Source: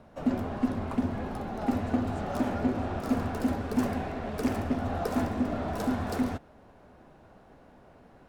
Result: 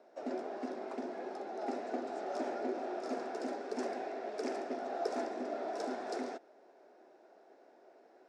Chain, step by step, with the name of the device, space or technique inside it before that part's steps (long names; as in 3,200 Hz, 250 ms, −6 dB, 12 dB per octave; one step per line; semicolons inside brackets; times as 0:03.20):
phone speaker on a table (loudspeaker in its box 330–8,100 Hz, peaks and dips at 370 Hz +8 dB, 670 Hz +5 dB, 1,100 Hz −7 dB, 3,000 Hz −6 dB, 5,300 Hz +6 dB)
level −6.5 dB